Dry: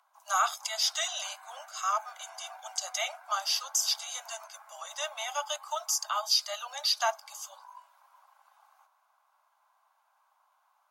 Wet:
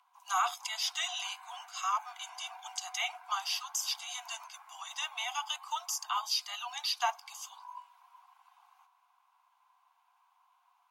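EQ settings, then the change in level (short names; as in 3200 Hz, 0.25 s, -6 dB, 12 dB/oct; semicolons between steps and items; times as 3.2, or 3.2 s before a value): dynamic EQ 4600 Hz, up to -5 dB, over -38 dBFS, Q 0.77; rippled Chebyshev high-pass 700 Hz, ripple 9 dB; +4.5 dB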